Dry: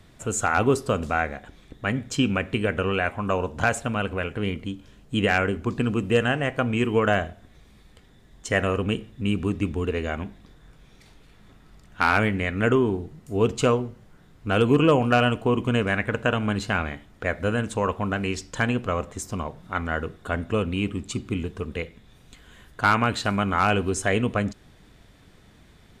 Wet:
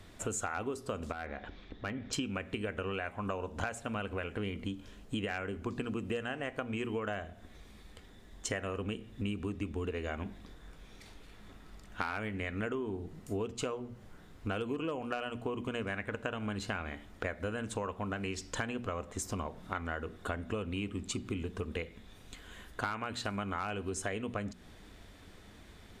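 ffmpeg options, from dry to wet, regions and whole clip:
-filter_complex "[0:a]asettb=1/sr,asplit=3[a][b][c];[a]atrim=end=1.124[d];[b]atrim=start=1.12:end=2.13,asetpts=PTS-STARTPTS,afade=t=in:d=0.004:c=qsin,afade=t=out:st=1.006:d=0.004:c=qsin,acompressor=threshold=-38dB:ratio=2:attack=3.2:release=140:knee=1:detection=peak,lowpass=f=4.8k:w=0.5412,lowpass=f=4.8k:w=1.3066,asoftclip=type=hard:threshold=-26dB[e];[c]atrim=start=2.126[f];[d][e]acrossfade=d=0.004:c1=hsin:c2=qsin[g];[g][f]acrossfade=d=0.004:c1=qsin:c2=hsin,equalizer=f=140:w=4.2:g=-9.5,bandreject=f=60:t=h:w=6,bandreject=f=120:t=h:w=6,bandreject=f=180:t=h:w=6,bandreject=f=240:t=h:w=6,acompressor=threshold=-33dB:ratio=10"

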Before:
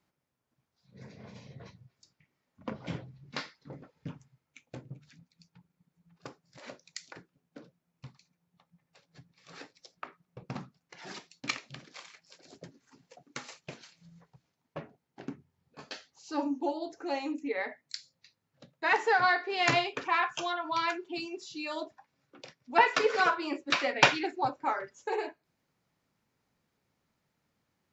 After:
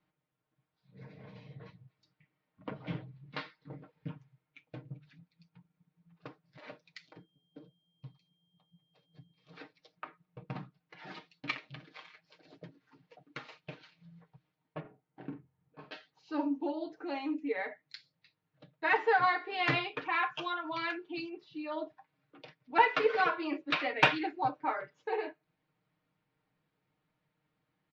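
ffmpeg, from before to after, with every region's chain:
-filter_complex "[0:a]asettb=1/sr,asplit=3[a][b][c];[a]atrim=end=7.094[d];[b]atrim=start=7.09:end=9.57,asetpts=PTS-STARTPTS,afade=t=in:d=0.004:c=qsin,afade=t=out:st=2.476:d=0.004:c=qsin,equalizer=f=1.8k:w=0.67:g=-12,aeval=exprs='val(0)+0.0002*sin(2*PI*3200*n/s)':c=same[e];[c]atrim=start=9.566[f];[d][e]acrossfade=d=0.004:c1=hsin:c2=qsin[g];[g][f]acrossfade=d=0.004:c1=qsin:c2=hsin,asettb=1/sr,asplit=3[h][i][j];[h]atrim=end=14.804[k];[i]atrim=start=14.8:end=15.92,asetpts=PTS-STARTPTS,afade=t=in:d=0.004:c=qsin,afade=t=out:st=1.116:d=0.004:c=qsin,lowpass=f=1.7k:p=1,asplit=2[l][m];[m]adelay=45,volume=-7dB[n];[l][n]amix=inputs=2:normalize=0,atrim=end_sample=49392[o];[j]atrim=start=15.916[p];[k][o]acrossfade=d=0.004:c1=hsin:c2=qsin[q];[q][p]acrossfade=d=0.004:c1=qsin:c2=hsin,asettb=1/sr,asplit=3[r][s][t];[r]atrim=end=21.294[u];[s]atrim=start=21.29:end=21.86,asetpts=PTS-STARTPTS,afade=t=in:d=0.004:c=qsin,afade=t=out:st=0.566:d=0.004:c=qsin,lowpass=2.2k,aemphasis=mode=production:type=50fm[v];[t]atrim=start=21.856[w];[u][v]acrossfade=d=0.004:c1=hsin:c2=qsin[x];[x][w]acrossfade=d=0.004:c1=qsin:c2=hsin,lowpass=f=3.8k:w=0.5412,lowpass=f=3.8k:w=1.3066,aecho=1:1:6.5:0.65,acontrast=25,volume=-8.5dB"

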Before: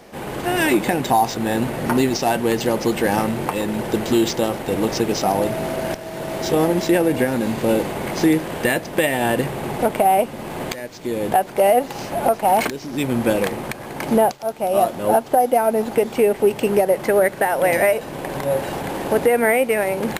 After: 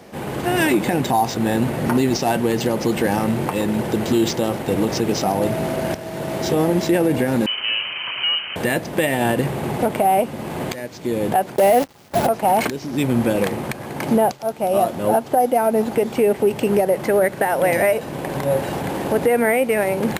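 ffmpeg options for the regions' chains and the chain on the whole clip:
-filter_complex "[0:a]asettb=1/sr,asplit=3[a][b][c];[a]atrim=end=7.464[d];[b]atrim=start=7.46:end=8.56,asetpts=PTS-STARTPTS,afade=t=in:d=0.004:c=qsin,afade=t=out:st=1.096:d=0.004:c=qsin,equalizer=f=460:w=4.2:g=-14.5,volume=17.5dB,asoftclip=hard,volume=-17.5dB,lowpass=f=2.7k:t=q:w=0.5098,lowpass=f=2.7k:t=q:w=0.6013,lowpass=f=2.7k:t=q:w=0.9,lowpass=f=2.7k:t=q:w=2.563,afreqshift=-3200[e];[c]atrim=start=8.556[f];[d][e]acrossfade=d=0.004:c1=hsin:c2=qsin[g];[g][f]acrossfade=d=0.004:c1=qsin:c2=hsin,asettb=1/sr,asplit=3[h][i][j];[h]atrim=end=11.564[k];[i]atrim=start=11.56:end=12.27,asetpts=PTS-STARTPTS,afade=t=in:d=0.004:c=qsin,afade=t=out:st=0.706:d=0.004:c=qsin,agate=range=-23dB:threshold=-25dB:ratio=16:release=100:detection=peak,acontrast=56,acrusher=bits=5:dc=4:mix=0:aa=0.000001[l];[j]atrim=start=12.266[m];[k][l]acrossfade=d=0.004:c1=hsin:c2=qsin[n];[n][m]acrossfade=d=0.004:c1=qsin:c2=hsin,highpass=80,lowshelf=f=210:g=7,alimiter=limit=-8.5dB:level=0:latency=1:release=61"

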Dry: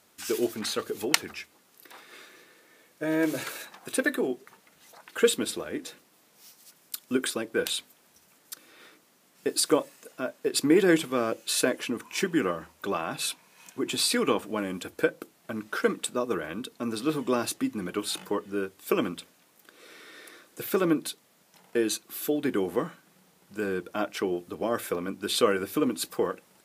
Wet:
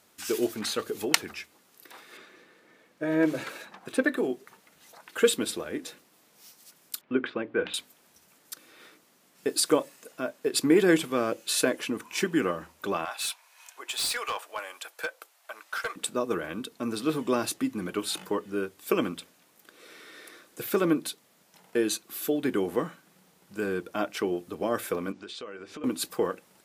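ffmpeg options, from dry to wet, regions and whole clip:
-filter_complex "[0:a]asettb=1/sr,asplit=3[a][b][c];[a]atrim=end=2.174[d];[b]atrim=start=2.17:end=4.17,asetpts=PTS-STARTPTS,afade=t=in:d=0.004:c=qsin,afade=t=out:st=1.996:d=0.004:c=qsin,lowpass=f=2.9k:p=1,equalizer=f=200:t=o:w=0.51:g=4,aphaser=in_gain=1:out_gain=1:delay=3.9:decay=0.22:speed=1.9:type=sinusoidal[e];[c]atrim=start=4.166[f];[d][e]acrossfade=d=0.004:c1=hsin:c2=qsin[g];[g][f]acrossfade=d=0.004:c1=qsin:c2=hsin,asettb=1/sr,asplit=3[h][i][j];[h]atrim=end=7.014[k];[i]atrim=start=7.01:end=7.74,asetpts=PTS-STARTPTS,afade=t=in:d=0.004:c=qsin,afade=t=out:st=0.726:d=0.004:c=qsin,lowpass=f=2.7k:w=0.5412,lowpass=f=2.7k:w=1.3066,bandreject=f=60:t=h:w=6,bandreject=f=120:t=h:w=6,bandreject=f=180:t=h:w=6,bandreject=f=240:t=h:w=6,bandreject=f=300:t=h:w=6[l];[j]atrim=start=7.736[m];[k][l]acrossfade=d=0.004:c1=hsin:c2=qsin[n];[n][m]acrossfade=d=0.004:c1=qsin:c2=hsin,asettb=1/sr,asplit=3[o][p][q];[o]atrim=end=13.054[r];[p]atrim=start=13.05:end=15.96,asetpts=PTS-STARTPTS,afade=t=in:d=0.004:c=qsin,afade=t=out:st=2.906:d=0.004:c=qsin,highpass=f=660:w=0.5412,highpass=f=660:w=1.3066,volume=25.5dB,asoftclip=hard,volume=-25.5dB[s];[q]atrim=start=15.956[t];[r][s]acrossfade=d=0.004:c1=hsin:c2=qsin[u];[u][t]acrossfade=d=0.004:c1=qsin:c2=hsin,asettb=1/sr,asplit=3[v][w][x];[v]atrim=end=25.124[y];[w]atrim=start=25.12:end=25.84,asetpts=PTS-STARTPTS,afade=t=in:d=0.004:c=qsin,afade=t=out:st=0.716:d=0.004:c=qsin,lowpass=f=6.8k:w=0.5412,lowpass=f=6.8k:w=1.3066,bass=f=250:g=-6,treble=f=4k:g=-1,acompressor=threshold=-40dB:ratio=4:attack=3.2:release=140:knee=1:detection=peak[z];[x]atrim=start=25.836[aa];[y][z]acrossfade=d=0.004:c1=hsin:c2=qsin[ab];[ab][aa]acrossfade=d=0.004:c1=qsin:c2=hsin"

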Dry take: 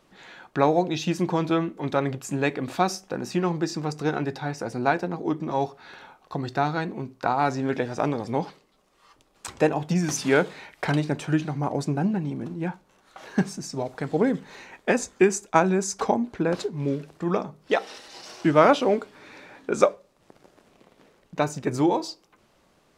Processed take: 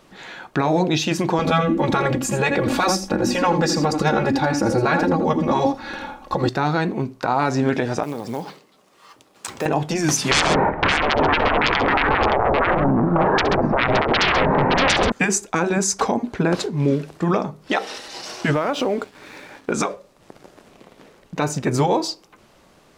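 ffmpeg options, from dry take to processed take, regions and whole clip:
-filter_complex "[0:a]asettb=1/sr,asplit=3[a][b][c];[a]atrim=end=1.394[d];[b]atrim=start=1.39:end=6.49,asetpts=PTS-STARTPTS,afade=t=in:d=0.004:c=qsin,afade=t=out:st=5.096:d=0.004:c=qsin,lowshelf=f=460:g=11,aecho=1:1:3.6:0.81,atrim=end_sample=224910,aecho=1:1:82:0.266,atrim=end_sample=224910[e];[c]atrim=start=6.486[f];[d][e]acrossfade=d=0.004:c1=hsin:c2=qsin[g];[g][f]acrossfade=d=0.004:c1=qsin:c2=hsin,asettb=1/sr,asplit=3[h][i][j];[h]atrim=end=8.034[k];[i]atrim=start=8.03:end=9.66,asetpts=PTS-STARTPTS,afade=t=in:d=0.004:c=qsin,afade=t=out:st=1.626:d=0.004:c=qsin,highpass=120,acompressor=threshold=-36dB:ratio=2.5:attack=3.2:release=140:knee=1:detection=peak,acrusher=bits=5:mode=log:mix=0:aa=0.000001[l];[j]atrim=start=9.656[m];[k][l]acrossfade=d=0.004:c1=hsin:c2=qsin[n];[n][m]acrossfade=d=0.004:c1=qsin:c2=hsin,asettb=1/sr,asplit=3[o][p][q];[o]atrim=end=10.314[r];[p]atrim=start=10.31:end=15.12,asetpts=PTS-STARTPTS,afade=t=in:d=0.004:c=qsin,afade=t=out:st=4.806:d=0.004:c=qsin,lowpass=f=1.1k:w=0.5412,lowpass=f=1.1k:w=1.3066,aeval=exprs='0.376*sin(PI/2*10*val(0)/0.376)':c=same,aecho=1:1:67|133|568:0.106|0.158|0.2,atrim=end_sample=212121[s];[q]atrim=start=15.116[t];[r][s]acrossfade=d=0.004:c1=hsin:c2=qsin[u];[u][t]acrossfade=d=0.004:c1=qsin:c2=hsin,asettb=1/sr,asplit=3[v][w][x];[v]atrim=end=18.534[y];[w]atrim=start=18.53:end=19.72,asetpts=PTS-STARTPTS,afade=t=in:d=0.004:c=qsin,afade=t=out:st=1.186:d=0.004:c=qsin,acompressor=threshold=-25dB:ratio=12:attack=3.2:release=140:knee=1:detection=peak,aeval=exprs='sgn(val(0))*max(abs(val(0))-0.002,0)':c=same[z];[x]atrim=start=19.716[aa];[y][z]acrossfade=d=0.004:c1=hsin:c2=qsin[ab];[ab][aa]acrossfade=d=0.004:c1=qsin:c2=hsin,afftfilt=real='re*lt(hypot(re,im),0.631)':imag='im*lt(hypot(re,im),0.631)':win_size=1024:overlap=0.75,alimiter=limit=-17.5dB:level=0:latency=1:release=81,volume=9dB"

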